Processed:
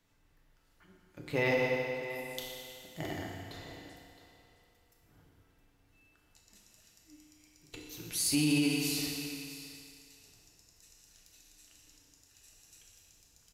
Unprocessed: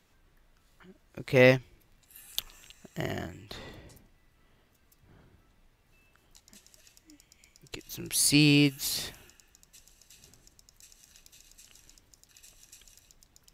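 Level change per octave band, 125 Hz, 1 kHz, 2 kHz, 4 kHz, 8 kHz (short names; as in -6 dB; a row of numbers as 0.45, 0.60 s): -8.5, -1.0, -5.0, -6.0, -4.5 dB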